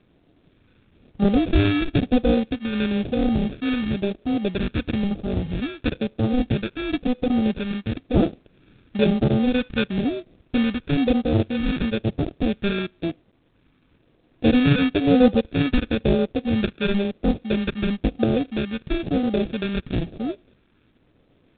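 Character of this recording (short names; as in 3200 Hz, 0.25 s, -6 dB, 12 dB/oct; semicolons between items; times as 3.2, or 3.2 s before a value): aliases and images of a low sample rate 1000 Hz, jitter 0%; phasing stages 2, 1 Hz, lowest notch 700–1500 Hz; a quantiser's noise floor 12-bit, dither none; G.726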